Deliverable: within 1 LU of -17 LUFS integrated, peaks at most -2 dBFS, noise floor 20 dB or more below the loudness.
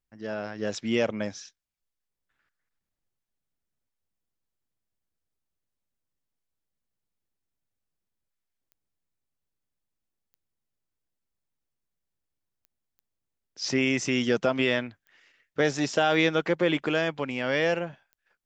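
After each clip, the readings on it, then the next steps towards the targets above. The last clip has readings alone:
clicks 7; loudness -26.5 LUFS; peak -9.5 dBFS; loudness target -17.0 LUFS
-> de-click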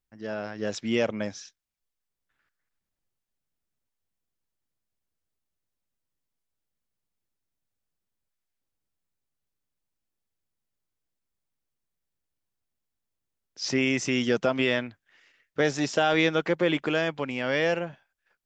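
clicks 0; loudness -26.5 LUFS; peak -9.5 dBFS; loudness target -17.0 LUFS
-> gain +9.5 dB; limiter -2 dBFS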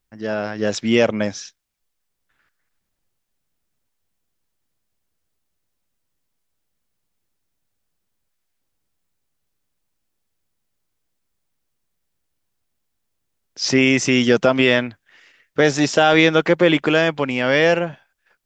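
loudness -17.5 LUFS; peak -2.0 dBFS; noise floor -74 dBFS

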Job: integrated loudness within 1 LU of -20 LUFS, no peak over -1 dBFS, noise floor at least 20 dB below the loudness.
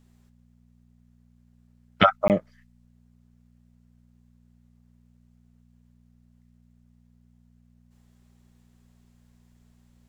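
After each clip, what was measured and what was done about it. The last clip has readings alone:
dropouts 1; longest dropout 18 ms; hum 60 Hz; harmonics up to 240 Hz; hum level -56 dBFS; loudness -22.5 LUFS; peak -2.5 dBFS; loudness target -20.0 LUFS
-> interpolate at 2.28, 18 ms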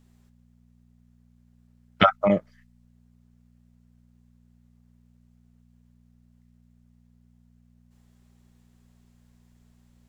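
dropouts 0; hum 60 Hz; harmonics up to 240 Hz; hum level -57 dBFS
-> de-hum 60 Hz, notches 4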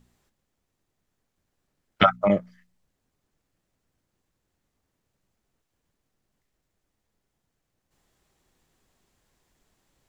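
hum none; loudness -22.5 LUFS; peak -2.5 dBFS; loudness target -20.0 LUFS
-> gain +2.5 dB; limiter -1 dBFS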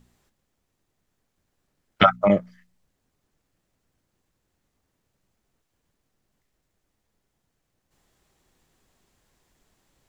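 loudness -20.0 LUFS; peak -1.0 dBFS; noise floor -77 dBFS

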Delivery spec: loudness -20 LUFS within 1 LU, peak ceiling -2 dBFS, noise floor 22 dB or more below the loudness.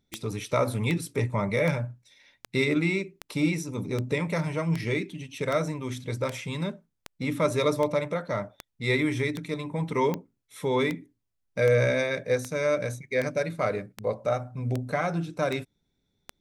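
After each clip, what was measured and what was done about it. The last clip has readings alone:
clicks 22; loudness -28.0 LUFS; peak -9.5 dBFS; loudness target -20.0 LUFS
-> de-click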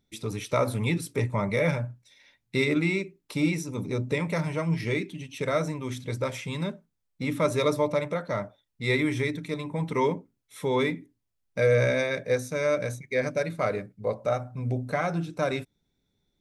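clicks 0; loudness -28.0 LUFS; peak -11.5 dBFS; loudness target -20.0 LUFS
-> gain +8 dB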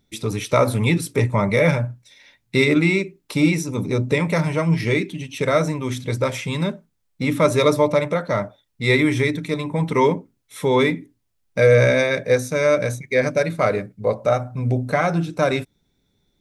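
loudness -20.5 LUFS; peak -3.5 dBFS; noise floor -69 dBFS

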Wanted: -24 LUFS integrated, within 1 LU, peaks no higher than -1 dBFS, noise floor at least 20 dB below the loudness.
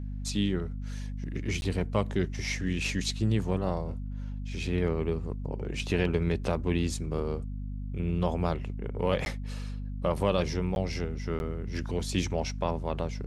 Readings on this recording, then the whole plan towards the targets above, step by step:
dropouts 4; longest dropout 11 ms; hum 50 Hz; harmonics up to 250 Hz; hum level -33 dBFS; loudness -31.5 LUFS; peak -12.0 dBFS; loudness target -24.0 LUFS
-> interpolate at 1.61/9.25/10.75/11.39, 11 ms; notches 50/100/150/200/250 Hz; gain +7.5 dB

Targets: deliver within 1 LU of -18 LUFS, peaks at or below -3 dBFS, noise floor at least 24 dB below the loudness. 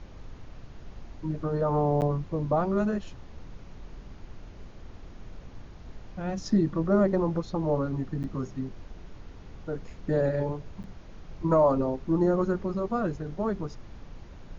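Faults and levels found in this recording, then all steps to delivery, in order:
dropouts 3; longest dropout 9.0 ms; noise floor -47 dBFS; noise floor target -52 dBFS; loudness -28.0 LUFS; peak -12.0 dBFS; loudness target -18.0 LUFS
-> interpolate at 2.01/8.23/10.83, 9 ms; noise print and reduce 6 dB; gain +10 dB; limiter -3 dBFS

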